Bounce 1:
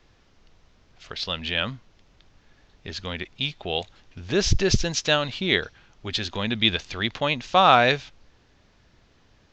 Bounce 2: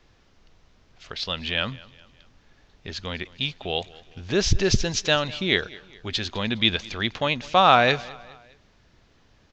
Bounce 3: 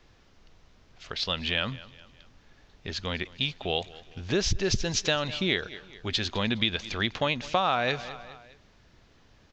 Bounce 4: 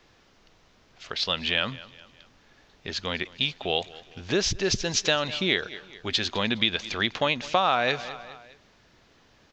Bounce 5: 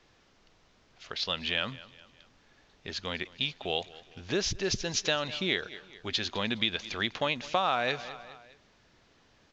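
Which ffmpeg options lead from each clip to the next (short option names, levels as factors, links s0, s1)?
-af "aecho=1:1:206|412|618:0.0841|0.0395|0.0186"
-af "acompressor=threshold=0.0794:ratio=6"
-af "lowshelf=f=130:g=-11,volume=1.41"
-af "volume=0.562" -ar 16000 -c:a pcm_mulaw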